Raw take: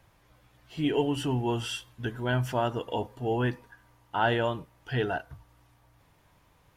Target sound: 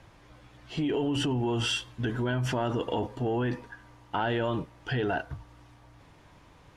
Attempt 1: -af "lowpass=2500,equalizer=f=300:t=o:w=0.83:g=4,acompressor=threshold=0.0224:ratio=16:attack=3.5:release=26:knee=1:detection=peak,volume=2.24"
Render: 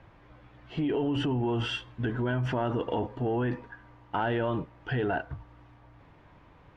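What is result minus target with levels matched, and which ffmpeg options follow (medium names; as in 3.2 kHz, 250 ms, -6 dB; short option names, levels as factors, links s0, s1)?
8 kHz band -14.5 dB
-af "lowpass=7300,equalizer=f=300:t=o:w=0.83:g=4,acompressor=threshold=0.0224:ratio=16:attack=3.5:release=26:knee=1:detection=peak,volume=2.24"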